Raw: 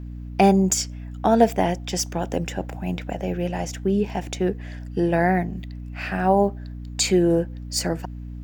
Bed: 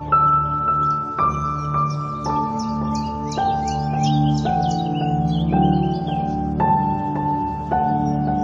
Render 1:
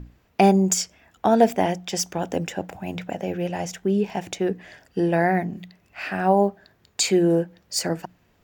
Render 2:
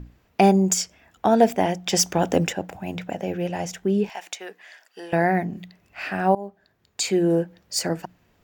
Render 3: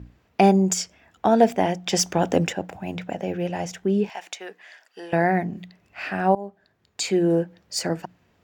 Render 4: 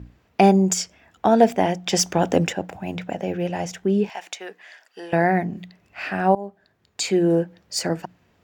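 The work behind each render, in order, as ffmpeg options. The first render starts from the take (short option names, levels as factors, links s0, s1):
-af "bandreject=f=60:t=h:w=6,bandreject=f=120:t=h:w=6,bandreject=f=180:t=h:w=6,bandreject=f=240:t=h:w=6,bandreject=f=300:t=h:w=6"
-filter_complex "[0:a]asettb=1/sr,asplit=3[s0][s1][s2];[s0]atrim=end=1.864[s3];[s1]atrim=start=1.86:end=2.53,asetpts=PTS-STARTPTS,afade=t=in:d=0.004:c=qsin,afade=t=out:st=0.666:d=0.004:c=qsin,acontrast=48[s4];[s2]atrim=start=2.526[s5];[s3][s4]acrossfade=d=0.004:c1=hsin:c2=qsin[s6];[s6][s5]acrossfade=d=0.004:c1=qsin:c2=hsin,asettb=1/sr,asplit=3[s7][s8][s9];[s7]atrim=end=4.094[s10];[s8]atrim=start=4.09:end=5.13,asetpts=PTS-STARTPTS,afade=t=in:d=0.004:c=qsin,afade=t=out:st=1.036:d=0.004:c=qsin,highpass=950[s11];[s9]atrim=start=5.126[s12];[s10][s11]acrossfade=d=0.004:c1=hsin:c2=qsin[s13];[s13][s12]acrossfade=d=0.004:c1=qsin:c2=hsin,asplit=2[s14][s15];[s14]atrim=end=6.35,asetpts=PTS-STARTPTS,afade=t=out:st=6.346:d=0.004:c=hsin:silence=0.112202[s16];[s15]atrim=start=6.35,asetpts=PTS-STARTPTS,afade=t=in:d=1.07:silence=0.112202[s17];[s16][s17]concat=n=2:v=0:a=1"
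-af "highpass=55,highshelf=f=9700:g=-9"
-af "volume=1.19"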